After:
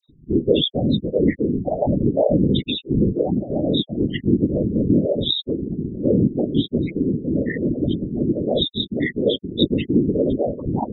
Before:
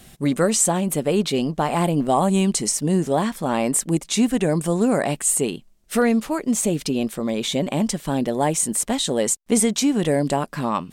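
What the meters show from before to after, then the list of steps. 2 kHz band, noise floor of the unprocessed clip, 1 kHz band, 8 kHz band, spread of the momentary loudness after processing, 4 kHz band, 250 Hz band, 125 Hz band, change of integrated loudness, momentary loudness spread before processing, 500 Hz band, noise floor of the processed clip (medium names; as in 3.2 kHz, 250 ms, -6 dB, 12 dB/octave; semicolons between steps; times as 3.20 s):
-4.0 dB, -51 dBFS, -10.0 dB, under -40 dB, 5 LU, +4.0 dB, +1.5 dB, +3.0 dB, 0.0 dB, 5 LU, +1.0 dB, -49 dBFS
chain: frequency axis rescaled in octaves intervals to 76%; on a send: echo that smears into a reverb 1575 ms, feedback 51%, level -10 dB; on the sum: loudest bins only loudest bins 4; phase dispersion lows, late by 90 ms, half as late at 1.5 kHz; in parallel at +2 dB: compression 6:1, threshold -28 dBFS, peak gain reduction 12 dB; on the sum: whisper effect; dynamic bell 580 Hz, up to +4 dB, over -34 dBFS, Q 4.4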